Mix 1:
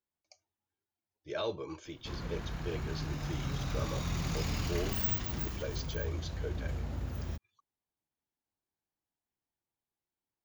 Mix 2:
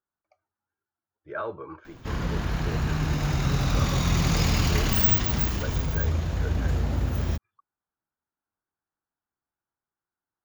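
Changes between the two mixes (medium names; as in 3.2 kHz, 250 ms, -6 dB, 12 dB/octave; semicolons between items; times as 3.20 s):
speech: add resonant low-pass 1.4 kHz, resonance Q 4.3; background +11.5 dB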